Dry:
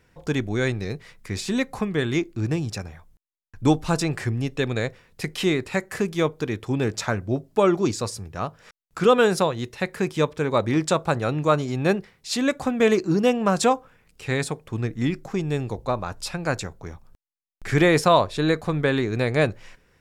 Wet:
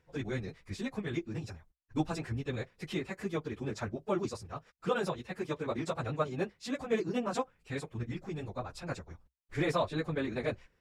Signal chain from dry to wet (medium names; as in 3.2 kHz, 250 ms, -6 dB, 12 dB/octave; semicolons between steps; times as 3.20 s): treble shelf 6.7 kHz -7 dB; plain phase-vocoder stretch 0.54×; peaking EQ 63 Hz +6.5 dB 0.41 oct; trim -8.5 dB